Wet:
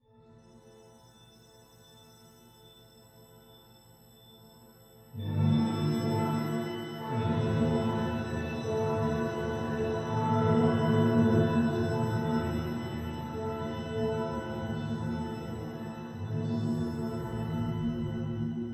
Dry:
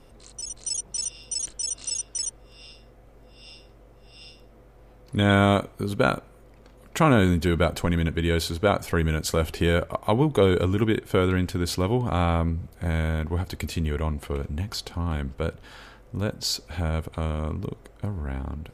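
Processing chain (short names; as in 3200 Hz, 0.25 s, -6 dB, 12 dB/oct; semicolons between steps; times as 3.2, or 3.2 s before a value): tape stop at the end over 1.92 s; bell 360 Hz -8 dB 0.46 oct; in parallel at +0.5 dB: compressor, threshold -34 dBFS, peak gain reduction 18.5 dB; on the sum: octave resonator A, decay 0.67 s; on a send: thinning echo 0.261 s, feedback 82%, level -18 dB; on the sum: shimmer reverb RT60 2.3 s, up +7 st, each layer -2 dB, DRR -8 dB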